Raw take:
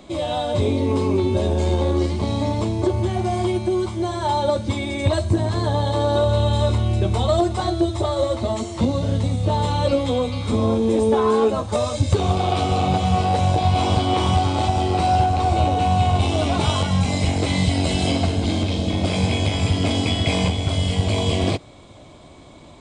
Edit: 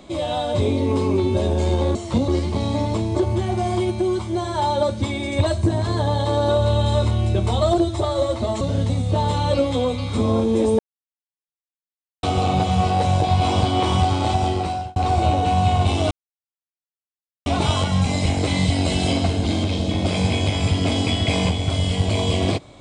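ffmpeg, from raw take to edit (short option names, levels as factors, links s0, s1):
-filter_complex "[0:a]asplit=9[s0][s1][s2][s3][s4][s5][s6][s7][s8];[s0]atrim=end=1.952[s9];[s1]atrim=start=8.618:end=8.952[s10];[s2]atrim=start=1.948:end=7.452[s11];[s3]atrim=start=7.788:end=8.622[s12];[s4]atrim=start=8.948:end=11.13,asetpts=PTS-STARTPTS,afade=t=out:st=2.178:d=0.004:c=hsin[s13];[s5]atrim=start=11.13:end=12.57,asetpts=PTS-STARTPTS,volume=0[s14];[s6]atrim=start=12.57:end=15.3,asetpts=PTS-STARTPTS,afade=t=in:d=0.004:c=hsin,afade=t=out:st=2.23:d=0.5[s15];[s7]atrim=start=15.3:end=16.45,asetpts=PTS-STARTPTS,afade=t=in:d=0.004:c=hsin,afade=t=out:st=1.146:d=0.004:c=hsin,apad=pad_dur=1.35[s16];[s8]atrim=start=16.45,asetpts=PTS-STARTPTS,afade=t=in:d=0.004:c=hsin[s17];[s9][s10]acrossfade=d=0.004:c1=hsin:c2=hsin[s18];[s18][s11]acrossfade=d=0.004:c1=hsin:c2=hsin[s19];[s19][s12]acrossfade=d=0.004:c1=hsin:c2=hsin[s20];[s13][s14][s15][s16][s17]concat=n=5:v=0:a=1[s21];[s20][s21]acrossfade=d=0.004:c1=hsin:c2=hsin"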